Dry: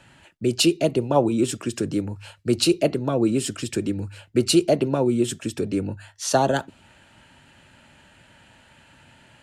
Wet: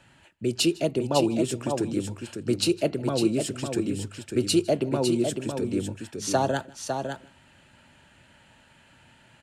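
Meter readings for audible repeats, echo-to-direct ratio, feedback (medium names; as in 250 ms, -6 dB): 3, -6.0 dB, no regular repeats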